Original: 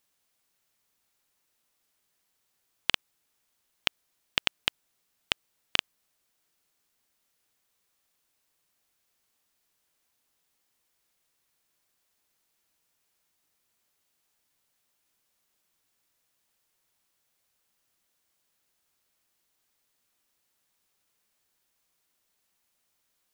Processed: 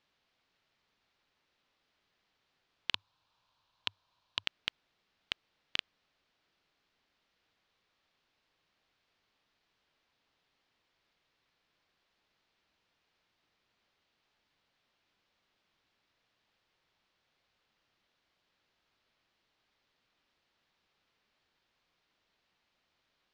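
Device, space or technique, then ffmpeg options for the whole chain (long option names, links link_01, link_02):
synthesiser wavefolder: -filter_complex "[0:a]aeval=exprs='0.168*(abs(mod(val(0)/0.168+3,4)-2)-1)':channel_layout=same,lowpass=frequency=4400:width=0.5412,lowpass=frequency=4400:width=1.3066,asettb=1/sr,asplit=3[link_01][link_02][link_03];[link_01]atrim=end=2.934[link_04];[link_02]atrim=start=2.93:end=4.44,asetpts=PTS-STARTPTS,afade=type=in:duration=0.004:curve=qsin,afade=type=out:start_time=1.506:duration=0.004:curve=qsin,equalizer=frequency=100:width_type=o:width=0.33:gain=10,equalizer=frequency=250:width_type=o:width=0.33:gain=-7,equalizer=frequency=400:width_type=o:width=0.33:gain=-9,equalizer=frequency=1000:width_type=o:width=0.33:gain=11,equalizer=frequency=2000:width_type=o:width=0.33:gain=-9,equalizer=frequency=4000:width_type=o:width=0.33:gain=4[link_05];[link_03]atrim=start=4.436[link_06];[link_04][link_05]acrossfade=duration=0.004:curve1=hsin:curve2=qsin[link_07];[link_07][link_06]acrossfade=duration=0.004:curve1=qsin:curve2=hsin,volume=3.5dB"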